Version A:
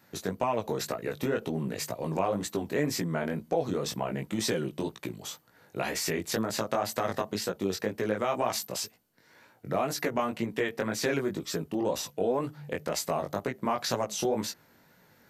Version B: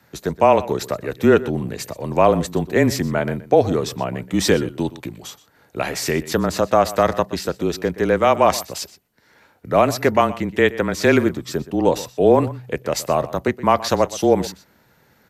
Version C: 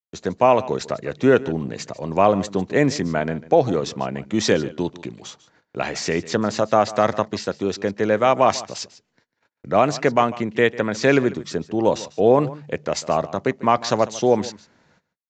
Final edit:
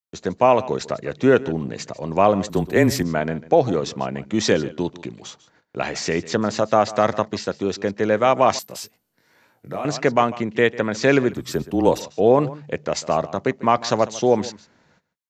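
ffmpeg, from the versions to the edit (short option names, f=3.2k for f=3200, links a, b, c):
-filter_complex "[1:a]asplit=2[a][b];[2:a]asplit=4[c][d][e][f];[c]atrim=end=2.502[g];[a]atrim=start=2.498:end=3.032[h];[d]atrim=start=3.028:end=8.592[i];[0:a]atrim=start=8.588:end=9.852[j];[e]atrim=start=9.848:end=11.39[k];[b]atrim=start=11.29:end=12.04[l];[f]atrim=start=11.94[m];[g][h]acrossfade=d=0.004:c1=hsin:c2=hsin[n];[n][i]acrossfade=d=0.004:c1=hsin:c2=hsin[o];[o][j]acrossfade=d=0.004:c1=hsin:c2=hsin[p];[p][k]acrossfade=d=0.004:c1=hsin:c2=hsin[q];[q][l]acrossfade=d=0.1:c1=tri:c2=tri[r];[r][m]acrossfade=d=0.1:c1=tri:c2=tri"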